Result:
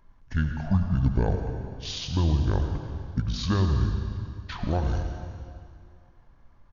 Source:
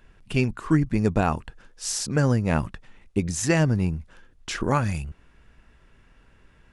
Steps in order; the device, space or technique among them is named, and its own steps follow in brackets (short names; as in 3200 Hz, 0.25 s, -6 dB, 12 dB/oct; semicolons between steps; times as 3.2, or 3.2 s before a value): monster voice (pitch shift -8.5 st; low shelf 120 Hz +7 dB; reverb RT60 2.3 s, pre-delay 72 ms, DRR 4.5 dB); gain -6 dB